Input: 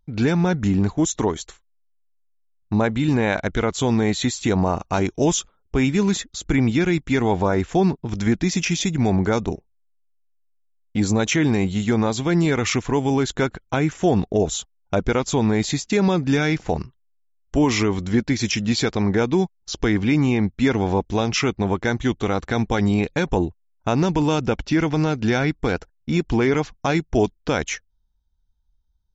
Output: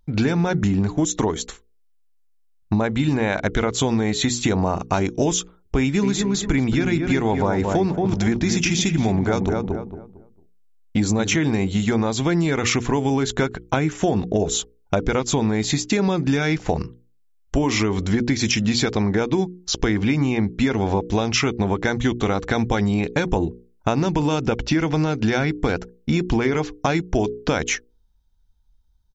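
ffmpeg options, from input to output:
-filter_complex "[0:a]asplit=3[s0][s1][s2];[s0]afade=t=out:st=6.02:d=0.02[s3];[s1]asplit=2[s4][s5];[s5]adelay=226,lowpass=f=1500:p=1,volume=0.501,asplit=2[s6][s7];[s7]adelay=226,lowpass=f=1500:p=1,volume=0.29,asplit=2[s8][s9];[s9]adelay=226,lowpass=f=1500:p=1,volume=0.29,asplit=2[s10][s11];[s11]adelay=226,lowpass=f=1500:p=1,volume=0.29[s12];[s4][s6][s8][s10][s12]amix=inputs=5:normalize=0,afade=t=in:st=6.02:d=0.02,afade=t=out:st=11.34:d=0.02[s13];[s2]afade=t=in:st=11.34:d=0.02[s14];[s3][s13][s14]amix=inputs=3:normalize=0,bandreject=f=60:t=h:w=6,bandreject=f=120:t=h:w=6,bandreject=f=180:t=h:w=6,bandreject=f=240:t=h:w=6,bandreject=f=300:t=h:w=6,bandreject=f=360:t=h:w=6,bandreject=f=420:t=h:w=6,bandreject=f=480:t=h:w=6,acompressor=threshold=0.0708:ratio=6,volume=2.11"

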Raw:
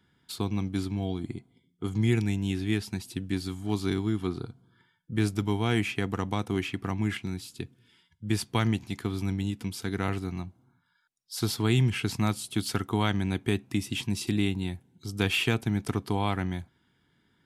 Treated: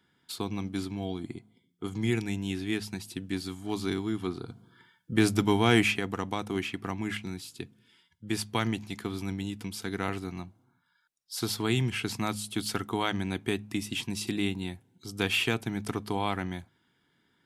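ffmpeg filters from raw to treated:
-filter_complex "[0:a]asettb=1/sr,asplit=3[s0][s1][s2];[s0]atrim=end=4.484[s3];[s1]atrim=start=4.48:end=5.98,asetpts=PTS-STARTPTS,afade=t=in:d=0.004:c=qsin,afade=t=out:st=1.496:d=0.004:c=qsin,acontrast=73[s4];[s2]atrim=start=5.976[s5];[s3][s4]acrossfade=d=0.004:c1=hsin:c2=qsin[s6];[s6][s5]acrossfade=d=0.004:c1=qsin:c2=hsin,lowshelf=f=130:g=-10.5,bandreject=f=52.47:t=h:w=4,bandreject=f=104.94:t=h:w=4,bandreject=f=157.41:t=h:w=4,bandreject=f=209.88:t=h:w=4"

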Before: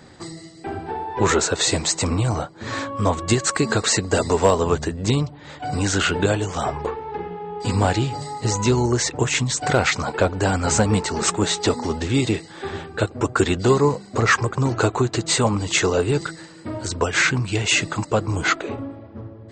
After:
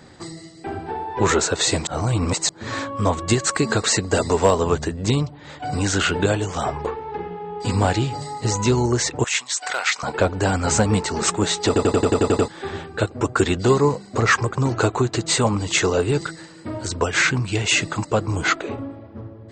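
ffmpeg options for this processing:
-filter_complex "[0:a]asettb=1/sr,asplit=3[s0][s1][s2];[s0]atrim=end=9.244[s3];[s1]atrim=start=9.24:end=10.03,asetpts=PTS-STARTPTS,afade=t=in:d=0.004:c=qsin,afade=t=out:st=0.786:d=0.004:c=qsin,highpass=1100[s4];[s2]atrim=start=10.026[s5];[s3][s4]acrossfade=d=0.004:c1=hsin:c2=qsin[s6];[s6][s5]acrossfade=d=0.004:c1=qsin:c2=hsin,asplit=12[s7][s8][s9][s10][s11][s12][s13][s14][s15][s16][s17][s18];[s7]atrim=end=1.872[s19];[s8]atrim=start=1.868:end=2.492,asetpts=PTS-STARTPTS,areverse[s20];[s9]atrim=start=2.488:end=11.762[s21];[s10]atrim=start=11.668:end=11.762[s22];[s11]atrim=start=11.668:end=11.762[s23];[s12]atrim=start=11.668:end=11.762[s24];[s13]atrim=start=11.668:end=11.762[s25];[s14]atrim=start=11.668:end=11.762[s26];[s15]atrim=start=11.668:end=11.762[s27];[s16]atrim=start=11.668:end=11.762[s28];[s17]atrim=start=11.668:end=11.762[s29];[s18]atrim=start=12.478[s30];[s19][s20]acrossfade=d=0.004:c1=hsin:c2=hsin[s31];[s31][s21]acrossfade=d=0.004:c1=hsin:c2=hsin[s32];[s32][s22]acrossfade=d=0.004:c1=hsin:c2=hsin[s33];[s33][s23]acrossfade=d=0.004:c1=hsin:c2=hsin[s34];[s34][s24]acrossfade=d=0.004:c1=hsin:c2=hsin[s35];[s35][s25]acrossfade=d=0.004:c1=hsin:c2=hsin[s36];[s36][s26]acrossfade=d=0.004:c1=hsin:c2=hsin[s37];[s37][s27]acrossfade=d=0.004:c1=hsin:c2=hsin[s38];[s38][s28]acrossfade=d=0.004:c1=hsin:c2=hsin[s39];[s39][s29]acrossfade=d=0.004:c1=hsin:c2=hsin[s40];[s40][s30]acrossfade=d=0.004:c1=hsin:c2=hsin"

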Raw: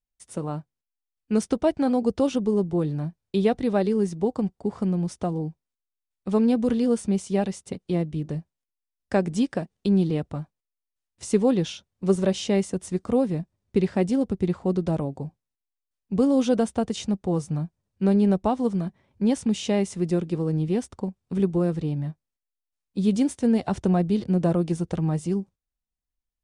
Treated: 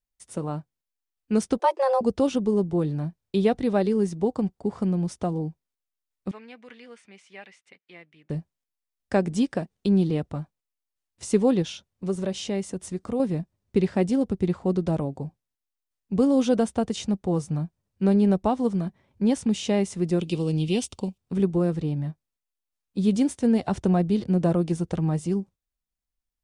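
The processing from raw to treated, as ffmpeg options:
-filter_complex "[0:a]asettb=1/sr,asplit=3[s0][s1][s2];[s0]atrim=end=1.594[s3];[s1]atrim=start=1.59:end=2.01,asetpts=PTS-STARTPTS,afade=t=in:d=0.004:c=qsin,afade=t=out:st=0.416:d=0.004:c=qsin,afreqshift=270[s4];[s2]atrim=start=2.006[s5];[s3][s4]acrossfade=d=0.004:c1=hsin:c2=qsin[s6];[s6][s5]acrossfade=d=0.004:c1=qsin:c2=hsin,asettb=1/sr,asplit=3[s7][s8][s9];[s7]atrim=end=6.314[s10];[s8]atrim=start=6.31:end=8.3,asetpts=PTS-STARTPTS,afade=t=in:d=0.004:c=qsin,afade=t=out:st=1.986:d=0.004:c=qsin,bandpass=f=2100:t=q:w=3[s11];[s9]atrim=start=8.296[s12];[s10][s11]acrossfade=d=0.004:c1=hsin:c2=qsin[s13];[s13][s12]acrossfade=d=0.004:c1=qsin:c2=hsin,asettb=1/sr,asplit=3[s14][s15][s16];[s14]atrim=end=11.624[s17];[s15]atrim=start=11.62:end=13.2,asetpts=PTS-STARTPTS,afade=t=in:d=0.004:c=qsin,afade=t=out:st=1.576:d=0.004:c=qsin,acompressor=threshold=0.0224:ratio=1.5:attack=3.2:release=140:knee=1:detection=peak[s18];[s16]atrim=start=13.196[s19];[s17][s18]acrossfade=d=0.004:c1=hsin:c2=qsin[s20];[s20][s19]acrossfade=d=0.004:c1=qsin:c2=hsin,asettb=1/sr,asplit=3[s21][s22][s23];[s21]atrim=end=20.204[s24];[s22]atrim=start=20.2:end=21.18,asetpts=PTS-STARTPTS,afade=t=in:d=0.004:c=qsin,afade=t=out:st=0.976:d=0.004:c=qsin,highshelf=f=2200:t=q:w=3:g=8.5[s25];[s23]atrim=start=21.176[s26];[s24][s25]acrossfade=d=0.004:c1=hsin:c2=qsin[s27];[s27][s26]acrossfade=d=0.004:c1=qsin:c2=hsin"

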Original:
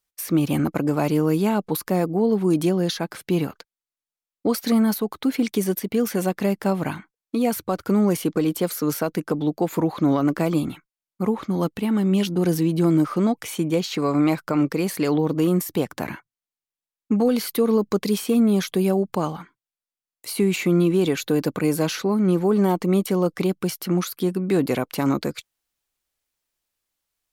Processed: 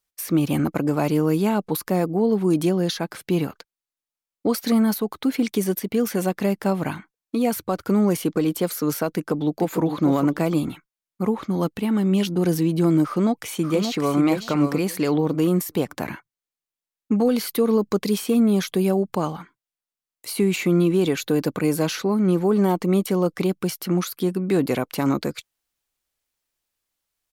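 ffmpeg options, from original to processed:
-filter_complex "[0:a]asplit=2[s0][s1];[s1]afade=t=in:st=9.12:d=0.01,afade=t=out:st=9.81:d=0.01,aecho=0:1:450|900:0.421697|0.0632545[s2];[s0][s2]amix=inputs=2:normalize=0,asplit=2[s3][s4];[s4]afade=t=in:st=13.05:d=0.01,afade=t=out:st=14.2:d=0.01,aecho=0:1:580|1160|1740:0.473151|0.0709727|0.0106459[s5];[s3][s5]amix=inputs=2:normalize=0"

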